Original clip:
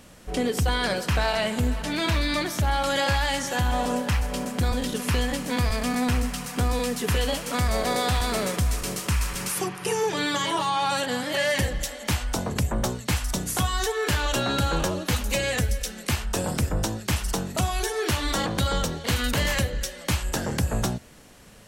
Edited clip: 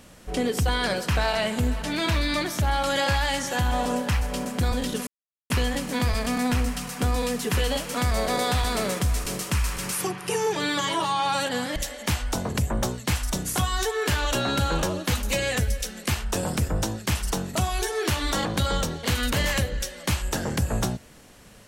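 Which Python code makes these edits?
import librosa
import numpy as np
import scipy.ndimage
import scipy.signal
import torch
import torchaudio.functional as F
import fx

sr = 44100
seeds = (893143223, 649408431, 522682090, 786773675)

y = fx.edit(x, sr, fx.insert_silence(at_s=5.07, length_s=0.43),
    fx.cut(start_s=11.33, length_s=0.44), tone=tone)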